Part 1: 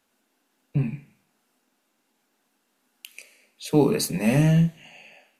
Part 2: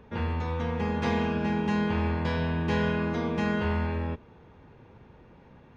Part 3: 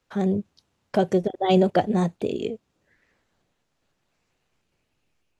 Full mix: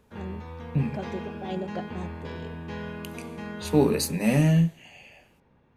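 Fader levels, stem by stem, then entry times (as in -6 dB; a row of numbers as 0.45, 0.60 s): -1.5, -9.5, -15.0 dB; 0.00, 0.00, 0.00 s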